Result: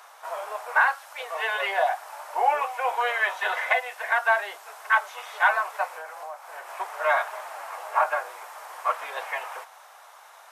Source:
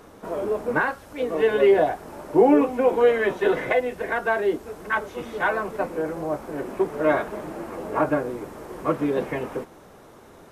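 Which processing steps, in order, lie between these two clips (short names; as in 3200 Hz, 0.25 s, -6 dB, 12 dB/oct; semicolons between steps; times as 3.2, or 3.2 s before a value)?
steep high-pass 720 Hz 36 dB/oct; 5.92–6.68 compressor 4:1, threshold -40 dBFS, peak gain reduction 9.5 dB; gain +4 dB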